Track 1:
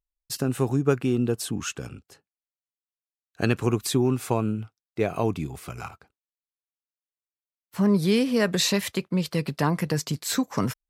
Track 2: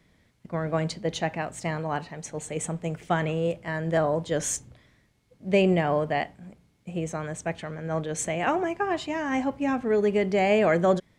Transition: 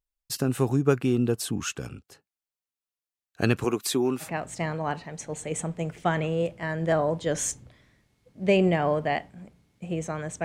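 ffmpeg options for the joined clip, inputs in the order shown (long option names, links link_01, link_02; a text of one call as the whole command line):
ffmpeg -i cue0.wav -i cue1.wav -filter_complex "[0:a]asettb=1/sr,asplit=3[link_01][link_02][link_03];[link_01]atrim=end=3.644[link_04];[link_02]atrim=start=3.64:end=4.32,asetpts=PTS-STARTPTS,afade=type=in:duration=0.004:curve=qsin,afade=type=out:start_time=0.676:duration=0.004:curve=qsin,highpass=260[link_05];[link_03]atrim=start=4.316[link_06];[link_04][link_05]acrossfade=duration=0.004:curve1=hsin:curve2=qsin[link_07];[link_07][link_06]acrossfade=duration=0.004:curve1=qsin:curve2=hsin,apad=whole_dur=10.44,atrim=end=10.44,atrim=end=4.32,asetpts=PTS-STARTPTS[link_08];[1:a]atrim=start=1.25:end=7.49,asetpts=PTS-STARTPTS[link_09];[link_08][link_09]acrossfade=duration=0.12:curve1=tri:curve2=tri" out.wav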